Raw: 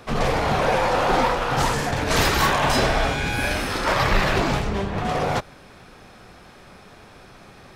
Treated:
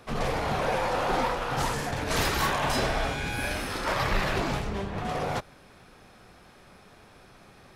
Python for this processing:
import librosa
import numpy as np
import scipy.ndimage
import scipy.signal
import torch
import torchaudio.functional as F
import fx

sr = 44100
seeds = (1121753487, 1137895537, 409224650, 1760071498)

y = fx.peak_eq(x, sr, hz=11000.0, db=4.5, octaves=0.41)
y = y * 10.0 ** (-7.0 / 20.0)